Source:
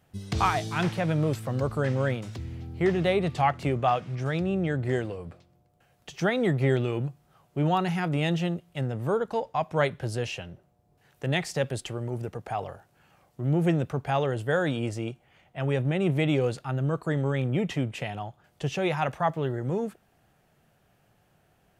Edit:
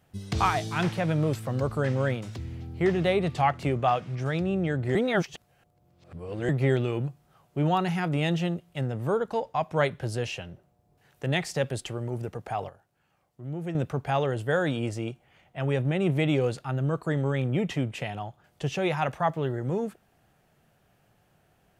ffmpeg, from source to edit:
ffmpeg -i in.wav -filter_complex "[0:a]asplit=5[link_01][link_02][link_03][link_04][link_05];[link_01]atrim=end=4.952[link_06];[link_02]atrim=start=4.948:end=6.492,asetpts=PTS-STARTPTS,areverse[link_07];[link_03]atrim=start=6.488:end=12.692[link_08];[link_04]atrim=start=12.688:end=13.752,asetpts=PTS-STARTPTS,volume=-10dB[link_09];[link_05]atrim=start=13.748[link_10];[link_06][link_07]acrossfade=duration=0.004:curve1=hsin:curve2=hsin[link_11];[link_11][link_08]acrossfade=duration=0.004:curve1=hsin:curve2=hsin[link_12];[link_12][link_09]acrossfade=duration=0.004:curve1=hsin:curve2=hsin[link_13];[link_13][link_10]acrossfade=duration=0.004:curve1=hsin:curve2=hsin" out.wav

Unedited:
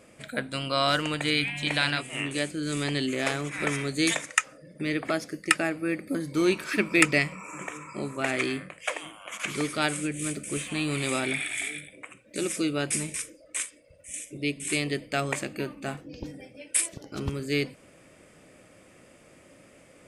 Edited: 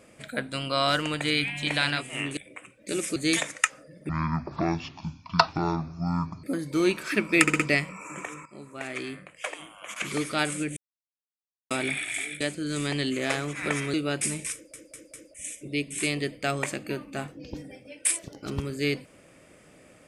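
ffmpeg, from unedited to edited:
ffmpeg -i in.wav -filter_complex "[0:a]asplit=17[link_01][link_02][link_03][link_04][link_05][link_06][link_07][link_08][link_09][link_10][link_11][link_12][link_13][link_14][link_15][link_16][link_17];[link_01]atrim=end=2.372[link_18];[link_02]atrim=start=11.838:end=12.632[link_19];[link_03]atrim=start=3.898:end=4.834[link_20];[link_04]atrim=start=4.83:end=6.05,asetpts=PTS-STARTPTS,asetrate=22932,aresample=44100,atrim=end_sample=103465,asetpts=PTS-STARTPTS[link_21];[link_05]atrim=start=6.046:end=7.092[link_22];[link_06]atrim=start=7.028:end=7.092[link_23];[link_07]atrim=start=7.028:end=7.092[link_24];[link_08]atrim=start=7.028:end=7.89,asetpts=PTS-STARTPTS,afade=type=out:start_time=0.858:duration=0.004:curve=hsin:silence=0.199526[link_25];[link_09]atrim=start=7.89:end=10.2,asetpts=PTS-STARTPTS,afade=type=in:duration=1.64:silence=0.199526,afade=type=out:start_time=2.306:duration=0.004:curve=hsin[link_26];[link_10]atrim=start=10.2:end=11.14,asetpts=PTS-STARTPTS,volume=0[link_27];[link_11]atrim=start=11.14:end=11.842,asetpts=PTS-STARTPTS,afade=type=in:duration=0.004:curve=hsin[link_28];[link_12]atrim=start=2.368:end=3.902[link_29];[link_13]atrim=start=12.628:end=13.432[link_30];[link_14]atrim=start=13.228:end=13.432[link_31];[link_15]atrim=start=13.228:end=13.432[link_32];[link_16]atrim=start=13.228:end=13.432[link_33];[link_17]atrim=start=14.028[link_34];[link_18][link_19]acrossfade=duration=0.004:curve1=hsin:curve2=hsin[link_35];[link_35][link_20]acrossfade=duration=0.004:curve1=hsin:curve2=hsin[link_36];[link_36][link_21]acrossfade=duration=0.004:curve1=hsin:curve2=hsin[link_37];[link_37][link_22]acrossfade=duration=0.004:curve1=hsin:curve2=hsin[link_38];[link_38][link_23]acrossfade=duration=0.004:curve1=hsin:curve2=hsin[link_39];[link_39][link_24]acrossfade=duration=0.004:curve1=hsin:curve2=hsin[link_40];[link_25][link_26][link_27][link_28]concat=n=4:v=0:a=1[link_41];[link_40][link_41]acrossfade=duration=0.004:curve1=hsin:curve2=hsin[link_42];[link_42][link_29]acrossfade=duration=0.004:curve1=hsin:curve2=hsin[link_43];[link_43][link_30]acrossfade=duration=0.004:curve1=hsin:curve2=hsin[link_44];[link_44][link_31]acrossfade=duration=0.004:curve1=hsin:curve2=hsin[link_45];[link_45][link_32]acrossfade=duration=0.004:curve1=hsin:curve2=hsin[link_46];[link_46][link_33]acrossfade=duration=0.004:curve1=hsin:curve2=hsin[link_47];[link_47][link_34]acrossfade=duration=0.004:curve1=hsin:curve2=hsin" out.wav

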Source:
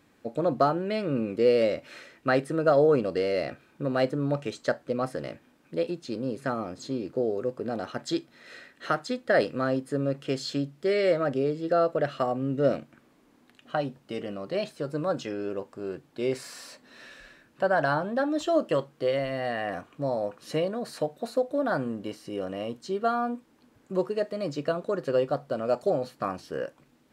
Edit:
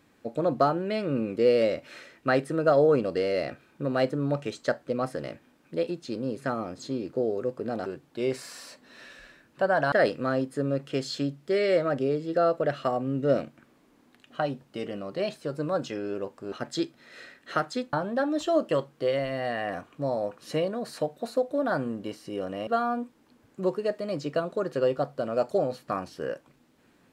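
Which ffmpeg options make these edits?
ffmpeg -i in.wav -filter_complex "[0:a]asplit=6[link_01][link_02][link_03][link_04][link_05][link_06];[link_01]atrim=end=7.862[link_07];[link_02]atrim=start=15.868:end=17.932[link_08];[link_03]atrim=start=9.268:end=15.872[link_09];[link_04]atrim=start=7.858:end=9.272[link_10];[link_05]atrim=start=17.928:end=22.672[link_11];[link_06]atrim=start=22.988[link_12];[link_07][link_08]acrossfade=duration=0.004:curve1=hsin:curve2=hsin[link_13];[link_13][link_09]acrossfade=duration=0.004:curve1=hsin:curve2=hsin[link_14];[link_14][link_10]acrossfade=duration=0.004:curve1=hsin:curve2=hsin[link_15];[link_15][link_11]acrossfade=duration=0.004:curve1=hsin:curve2=hsin[link_16];[link_16][link_12]acrossfade=duration=0.004:curve1=hsin:curve2=hsin" out.wav

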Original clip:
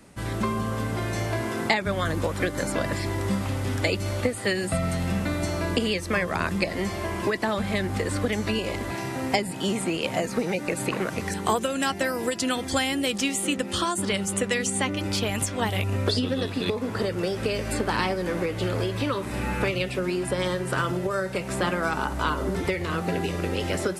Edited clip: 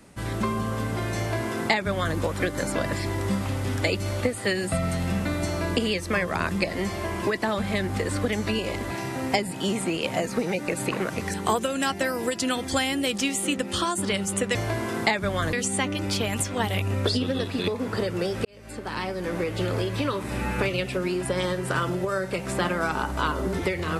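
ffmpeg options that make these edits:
ffmpeg -i in.wav -filter_complex "[0:a]asplit=4[link_01][link_02][link_03][link_04];[link_01]atrim=end=14.552[link_05];[link_02]atrim=start=1.178:end=2.162[link_06];[link_03]atrim=start=14.548:end=17.47,asetpts=PTS-STARTPTS,afade=type=out:start_time=2.918:duration=0.004:curve=hsin[link_07];[link_04]atrim=start=17.47,asetpts=PTS-STARTPTS,afade=type=in:duration=1.03[link_08];[link_05][link_06]acrossfade=duration=0.004:curve1=hsin:curve2=hsin[link_09];[link_07][link_08]concat=n=2:v=0:a=1[link_10];[link_09][link_10]acrossfade=duration=0.004:curve1=hsin:curve2=hsin" out.wav

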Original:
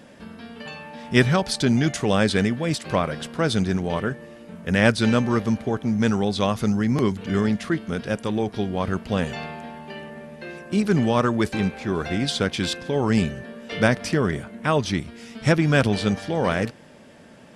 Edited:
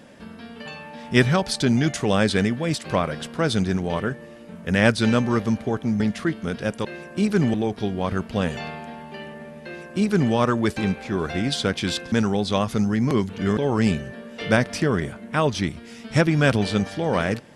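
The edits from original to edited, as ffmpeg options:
ffmpeg -i in.wav -filter_complex "[0:a]asplit=6[link_01][link_02][link_03][link_04][link_05][link_06];[link_01]atrim=end=6.002[link_07];[link_02]atrim=start=7.448:end=8.302[link_08];[link_03]atrim=start=10.398:end=11.092[link_09];[link_04]atrim=start=8.298:end=12.882[link_10];[link_05]atrim=start=5.998:end=7.452[link_11];[link_06]atrim=start=12.878[link_12];[link_07][link_08]acrossfade=duration=0.004:curve1=hsin:curve2=hsin[link_13];[link_13][link_09]acrossfade=duration=0.004:curve1=hsin:curve2=hsin[link_14];[link_14][link_10]acrossfade=duration=0.004:curve1=hsin:curve2=hsin[link_15];[link_15][link_11]acrossfade=duration=0.004:curve1=hsin:curve2=hsin[link_16];[link_16][link_12]acrossfade=duration=0.004:curve1=hsin:curve2=hsin" out.wav

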